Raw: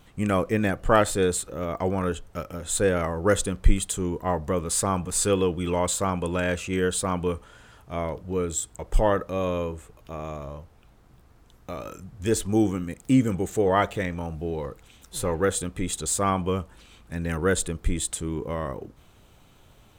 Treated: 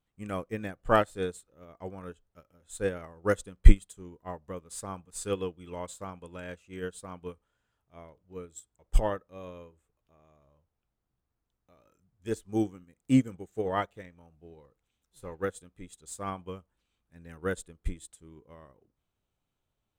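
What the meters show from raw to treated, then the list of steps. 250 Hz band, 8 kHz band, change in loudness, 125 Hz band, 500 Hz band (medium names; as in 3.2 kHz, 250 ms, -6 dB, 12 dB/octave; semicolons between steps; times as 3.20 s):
-7.5 dB, -17.0 dB, -6.5 dB, -6.5 dB, -9.5 dB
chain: upward expansion 2.5:1, over -33 dBFS; trim +6 dB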